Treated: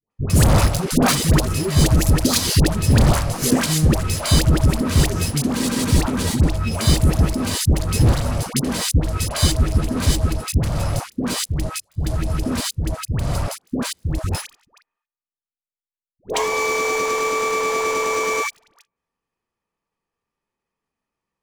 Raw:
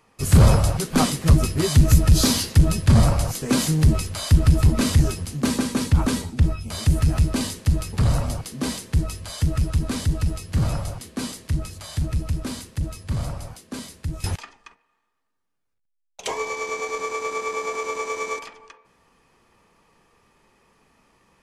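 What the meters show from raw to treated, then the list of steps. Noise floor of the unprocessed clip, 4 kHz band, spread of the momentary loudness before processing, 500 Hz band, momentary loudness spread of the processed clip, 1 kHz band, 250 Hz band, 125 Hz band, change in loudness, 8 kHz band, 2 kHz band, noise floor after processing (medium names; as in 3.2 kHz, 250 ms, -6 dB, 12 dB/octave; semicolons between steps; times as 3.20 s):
-73 dBFS, +5.5 dB, 14 LU, +5.5 dB, 9 LU, +5.5 dB, +3.0 dB, +1.0 dB, +2.5 dB, +5.5 dB, +6.5 dB, under -85 dBFS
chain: level held to a coarse grid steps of 18 dB; waveshaping leveller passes 5; phase dispersion highs, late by 109 ms, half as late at 760 Hz; trim -2.5 dB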